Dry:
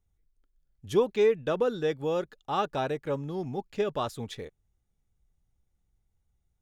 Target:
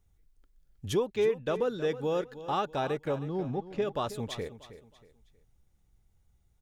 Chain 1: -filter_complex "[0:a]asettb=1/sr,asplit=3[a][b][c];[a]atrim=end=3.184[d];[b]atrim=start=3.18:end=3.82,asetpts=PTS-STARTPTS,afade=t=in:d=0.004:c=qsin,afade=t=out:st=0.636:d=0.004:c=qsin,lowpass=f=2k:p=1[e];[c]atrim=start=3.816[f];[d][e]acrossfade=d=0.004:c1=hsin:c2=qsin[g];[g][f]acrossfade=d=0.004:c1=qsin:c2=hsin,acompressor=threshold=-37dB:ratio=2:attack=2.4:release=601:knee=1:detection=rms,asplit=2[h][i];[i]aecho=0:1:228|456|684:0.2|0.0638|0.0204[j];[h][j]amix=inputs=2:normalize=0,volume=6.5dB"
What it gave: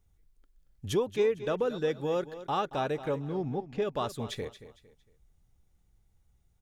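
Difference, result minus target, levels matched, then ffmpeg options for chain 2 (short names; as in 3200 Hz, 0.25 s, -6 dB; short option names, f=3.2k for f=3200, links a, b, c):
echo 90 ms early
-filter_complex "[0:a]asettb=1/sr,asplit=3[a][b][c];[a]atrim=end=3.184[d];[b]atrim=start=3.18:end=3.82,asetpts=PTS-STARTPTS,afade=t=in:d=0.004:c=qsin,afade=t=out:st=0.636:d=0.004:c=qsin,lowpass=f=2k:p=1[e];[c]atrim=start=3.816[f];[d][e]acrossfade=d=0.004:c1=hsin:c2=qsin[g];[g][f]acrossfade=d=0.004:c1=qsin:c2=hsin,acompressor=threshold=-37dB:ratio=2:attack=2.4:release=601:knee=1:detection=rms,asplit=2[h][i];[i]aecho=0:1:318|636|954:0.2|0.0638|0.0204[j];[h][j]amix=inputs=2:normalize=0,volume=6.5dB"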